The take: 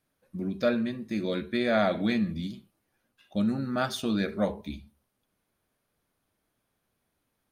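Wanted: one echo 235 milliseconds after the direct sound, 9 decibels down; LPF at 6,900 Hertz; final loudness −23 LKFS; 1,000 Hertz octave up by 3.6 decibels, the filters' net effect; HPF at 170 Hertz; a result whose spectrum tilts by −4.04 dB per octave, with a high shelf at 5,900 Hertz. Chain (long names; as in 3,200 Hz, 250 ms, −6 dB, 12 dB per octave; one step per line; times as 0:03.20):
high-pass filter 170 Hz
low-pass filter 6,900 Hz
parametric band 1,000 Hz +5.5 dB
high-shelf EQ 5,900 Hz +3 dB
single-tap delay 235 ms −9 dB
level +5.5 dB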